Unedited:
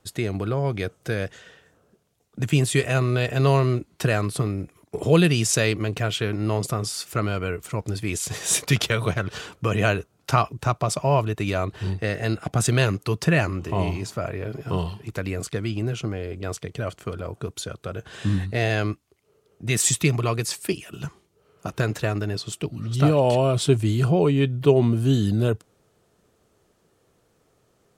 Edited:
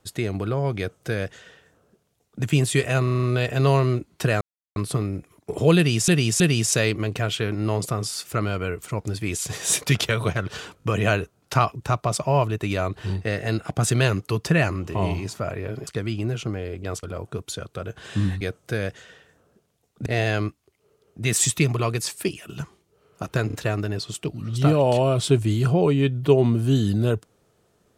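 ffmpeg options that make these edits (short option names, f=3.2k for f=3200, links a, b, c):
-filter_complex "[0:a]asplit=17[a][b][c][d][e][f][g][h][i][j][k][l][m][n][o][p][q];[a]atrim=end=3.072[r];[b]atrim=start=3.028:end=3.072[s];[c]atrim=start=3.028:end=3.072[t];[d]atrim=start=3.028:end=3.072[u];[e]atrim=start=3.028:end=3.072[v];[f]atrim=start=3.028:end=4.21,asetpts=PTS-STARTPTS,afade=t=out:st=1.178:d=0.004:c=hsin,apad=pad_dur=0.35[w];[g]atrim=start=4.21:end=5.532,asetpts=PTS-STARTPTS,afade=t=in:d=0.004:c=hsin[x];[h]atrim=start=5.208:end=5.532[y];[i]atrim=start=5.208:end=9.622[z];[j]atrim=start=9.598:end=9.622[aa];[k]atrim=start=9.598:end=14.642[ab];[l]atrim=start=15.448:end=16.612[ac];[m]atrim=start=17.118:end=18.502[ad];[n]atrim=start=0.778:end=2.432[ae];[o]atrim=start=18.498:end=21.942[af];[p]atrim=start=21.908:end=21.942[ag];[q]atrim=start=21.908[ah];[r][s]acrossfade=d=0.004:c1=hsin:c2=hsin[ai];[ai][t]acrossfade=d=0.004:c1=hsin:c2=hsin[aj];[aj][u]acrossfade=d=0.004:c1=hsin:c2=hsin[ak];[ak][v]acrossfade=d=0.004:c1=hsin:c2=hsin[al];[w][x]concat=n=2:v=0:a=1[am];[al][am]acrossfade=d=0.004:c1=hsin:c2=hsin[an];[an][y]acrossfade=d=0.004:c1=hsin:c2=hsin[ao];[ao][z]acrossfade=d=0.004:c1=hsin:c2=hsin[ap];[ap][aa]acrossfade=d=0.004:c1=hsin:c2=hsin[aq];[aq][ab]acrossfade=d=0.004:c1=hsin:c2=hsin[ar];[ar][ac]acrossfade=d=0.004:c1=hsin:c2=hsin[as];[as][ad]acrossfade=d=0.004:c1=hsin:c2=hsin[at];[at][ae]acrossfade=d=0.004:c1=hsin:c2=hsin[au];[au][af]acrossfade=d=0.004:c1=hsin:c2=hsin[av];[av][ag]acrossfade=d=0.004:c1=hsin:c2=hsin[aw];[aw][ah]acrossfade=d=0.004:c1=hsin:c2=hsin"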